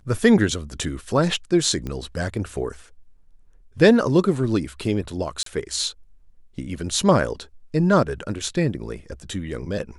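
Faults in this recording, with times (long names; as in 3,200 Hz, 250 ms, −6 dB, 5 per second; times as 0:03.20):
0:01.87: click −18 dBFS
0:05.43–0:05.46: drop-out 33 ms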